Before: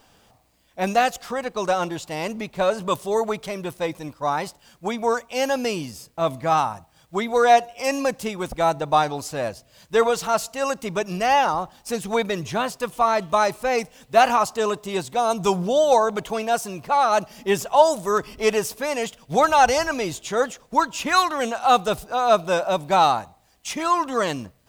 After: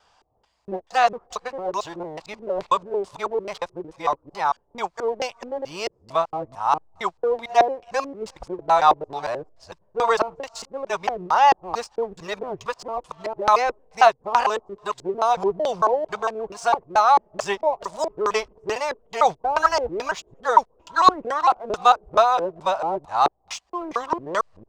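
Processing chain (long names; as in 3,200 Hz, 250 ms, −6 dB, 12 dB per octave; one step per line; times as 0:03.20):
reversed piece by piece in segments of 226 ms
octave-band graphic EQ 125/250/1,000/4,000/8,000 Hz −6/−11/+10/−6/+7 dB
auto-filter low-pass square 2.3 Hz 380–4,500 Hz
in parallel at −4 dB: slack as between gear wheels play −30.5 dBFS
on the sum: level −7.5 dB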